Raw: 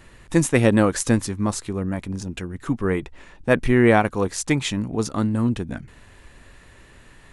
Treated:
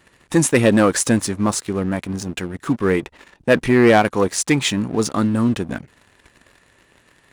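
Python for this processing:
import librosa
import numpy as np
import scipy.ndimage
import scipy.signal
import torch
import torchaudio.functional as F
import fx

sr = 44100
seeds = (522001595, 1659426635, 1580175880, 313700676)

y = fx.leveller(x, sr, passes=2)
y = fx.highpass(y, sr, hz=180.0, slope=6)
y = y * 10.0 ** (-1.0 / 20.0)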